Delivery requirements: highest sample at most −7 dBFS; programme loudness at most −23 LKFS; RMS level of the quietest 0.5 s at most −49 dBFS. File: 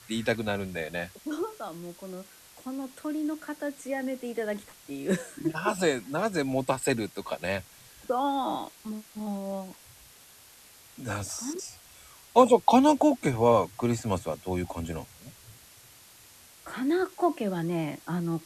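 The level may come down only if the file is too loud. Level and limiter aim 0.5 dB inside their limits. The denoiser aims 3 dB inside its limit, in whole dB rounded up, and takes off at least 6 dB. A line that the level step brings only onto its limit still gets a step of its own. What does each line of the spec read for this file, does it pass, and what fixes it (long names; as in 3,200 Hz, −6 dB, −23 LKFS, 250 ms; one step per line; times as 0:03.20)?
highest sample −5.5 dBFS: out of spec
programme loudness −28.5 LKFS: in spec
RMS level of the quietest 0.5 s −54 dBFS: in spec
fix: brickwall limiter −7.5 dBFS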